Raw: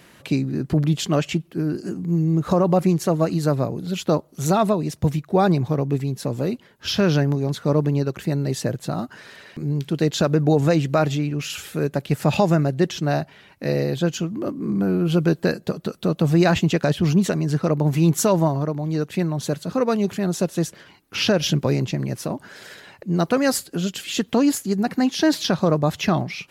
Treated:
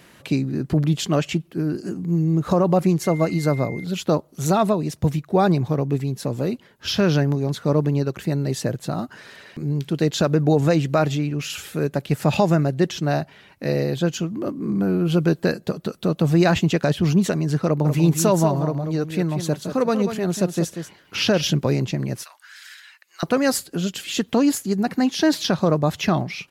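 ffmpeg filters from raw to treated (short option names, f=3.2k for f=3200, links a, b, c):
-filter_complex "[0:a]asettb=1/sr,asplit=3[a][b][c];[a]atrim=end=3.034[d];[b]atrim=start=3.03:end=3.84,asetpts=PTS-STARTPTS,afade=t=in:d=0.004:c=qsin,afade=t=out:st=0.806:d=0.004:c=qsin,aeval=exprs='val(0)+0.0158*sin(2*PI*2100*n/s)':c=same[e];[c]atrim=start=3.836[f];[d][e]acrossfade=d=0.004:c1=hsin:c2=qsin[g];[g][f]acrossfade=d=0.004:c1=qsin:c2=hsin,asplit=3[h][i][j];[h]afade=t=out:st=17.84:d=0.02[k];[i]aecho=1:1:189:0.355,afade=t=in:st=17.84:d=0.02,afade=t=out:st=21.41:d=0.02[l];[j]afade=t=in:st=21.41:d=0.02[m];[k][l][m]amix=inputs=3:normalize=0,asettb=1/sr,asplit=3[n][o][p];[n]atrim=end=22.234[q];[o]atrim=start=22.23:end=23.23,asetpts=PTS-STARTPTS,afade=t=in:d=0.004:c=qsin,afade=t=out:st=0.996:d=0.004:c=qsin,highpass=f=1.4k:w=0.5412,highpass=f=1.4k:w=1.3066[r];[p]atrim=start=23.226[s];[q][r]acrossfade=d=0.004:c1=hsin:c2=qsin[t];[t][s]acrossfade=d=0.004:c1=qsin:c2=hsin"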